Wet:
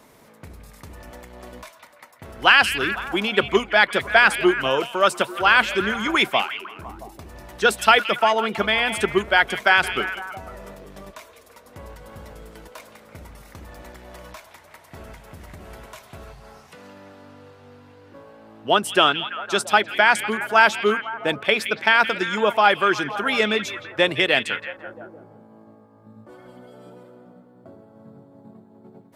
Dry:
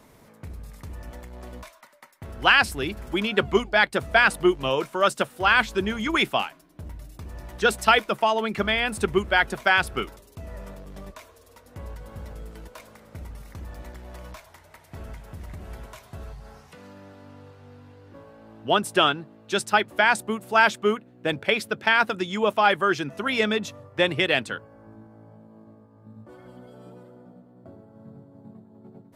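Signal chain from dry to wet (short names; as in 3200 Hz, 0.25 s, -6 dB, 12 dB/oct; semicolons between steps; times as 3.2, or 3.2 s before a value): low shelf 160 Hz -10 dB; delay with a stepping band-pass 0.168 s, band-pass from 2800 Hz, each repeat -0.7 oct, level -8 dB; gain +3.5 dB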